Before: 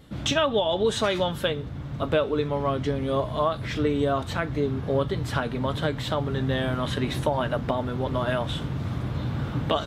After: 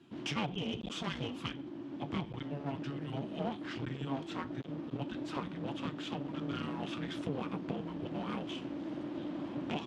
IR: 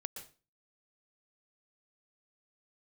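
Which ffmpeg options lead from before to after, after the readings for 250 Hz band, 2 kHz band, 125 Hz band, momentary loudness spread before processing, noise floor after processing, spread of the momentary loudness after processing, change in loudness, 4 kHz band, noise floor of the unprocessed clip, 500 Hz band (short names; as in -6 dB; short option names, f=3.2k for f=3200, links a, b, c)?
-8.0 dB, -13.0 dB, -14.0 dB, 6 LU, -46 dBFS, 3 LU, -13.0 dB, -12.5 dB, -35 dBFS, -18.0 dB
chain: -af "afreqshift=-420,aeval=exprs='clip(val(0),-1,0.0237)':c=same,highpass=130,lowpass=5.8k,volume=-8.5dB"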